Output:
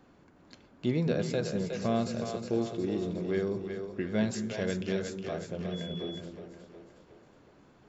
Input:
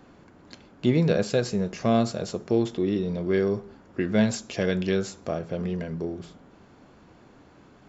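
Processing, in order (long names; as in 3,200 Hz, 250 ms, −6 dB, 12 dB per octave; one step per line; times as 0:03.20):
echo with a time of its own for lows and highs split 360 Hz, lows 218 ms, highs 364 ms, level −6.5 dB
0:05.71–0:06.19: steady tone 3,400 Hz −36 dBFS
level −7.5 dB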